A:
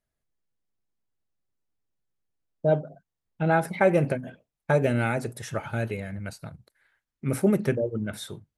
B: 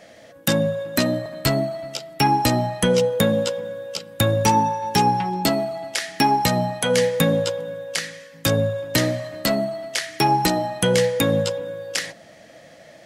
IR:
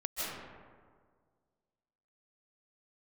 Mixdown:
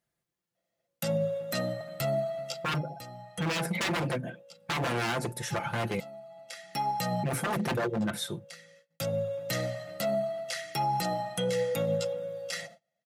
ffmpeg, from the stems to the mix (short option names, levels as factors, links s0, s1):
-filter_complex "[0:a]aeval=exprs='0.0562*(abs(mod(val(0)/0.0562+3,4)-2)-1)':c=same,volume=1.26,asplit=3[s0][s1][s2];[s0]atrim=end=6,asetpts=PTS-STARTPTS,afade=t=out:st=5.996:d=0.004:c=hsin[s3];[s1]atrim=start=6:end=6.96,asetpts=PTS-STARTPTS,volume=0[s4];[s2]atrim=start=6.96,asetpts=PTS-STARTPTS,afade=t=in:d=0.004:c=hsin[s5];[s3][s4][s5]concat=n=3:v=0:a=1,asplit=2[s6][s7];[1:a]agate=range=0.0282:threshold=0.00891:ratio=16:detection=peak,aecho=1:1:1.5:0.68,adelay=550,volume=0.316[s8];[s7]apad=whole_len=599847[s9];[s8][s9]sidechaincompress=threshold=0.00447:ratio=16:attack=34:release=905[s10];[s6][s10]amix=inputs=2:normalize=0,highpass=90,aecho=1:1:5.8:0.49,alimiter=limit=0.0841:level=0:latency=1:release=32"